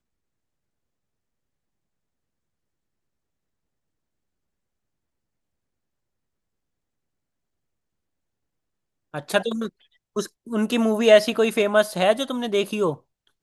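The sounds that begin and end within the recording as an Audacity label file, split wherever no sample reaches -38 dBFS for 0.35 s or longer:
9.140000	9.690000	sound
10.160000	12.950000	sound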